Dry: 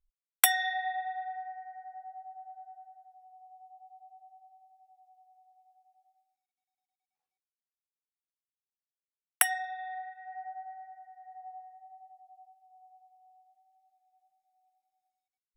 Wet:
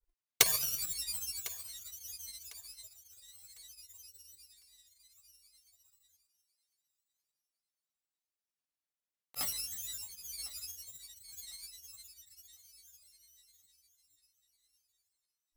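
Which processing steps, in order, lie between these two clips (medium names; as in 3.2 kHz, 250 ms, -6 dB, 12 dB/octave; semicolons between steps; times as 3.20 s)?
bit-reversed sample order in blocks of 128 samples; granulator, pitch spread up and down by 7 st; thinning echo 1052 ms, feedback 28%, high-pass 420 Hz, level -18 dB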